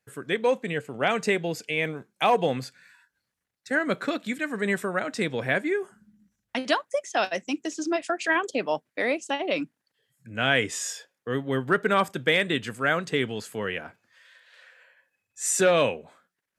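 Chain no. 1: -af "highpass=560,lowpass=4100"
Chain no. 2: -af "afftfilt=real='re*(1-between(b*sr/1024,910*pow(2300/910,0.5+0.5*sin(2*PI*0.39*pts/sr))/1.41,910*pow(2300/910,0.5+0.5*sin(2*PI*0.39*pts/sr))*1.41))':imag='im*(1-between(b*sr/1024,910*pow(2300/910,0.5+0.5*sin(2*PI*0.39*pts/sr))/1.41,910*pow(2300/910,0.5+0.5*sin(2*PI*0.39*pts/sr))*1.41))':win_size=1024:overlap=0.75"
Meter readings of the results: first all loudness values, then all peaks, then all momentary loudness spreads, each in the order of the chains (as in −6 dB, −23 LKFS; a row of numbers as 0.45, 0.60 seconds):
−28.5, −27.5 LKFS; −10.0, −7.5 dBFS; 13, 10 LU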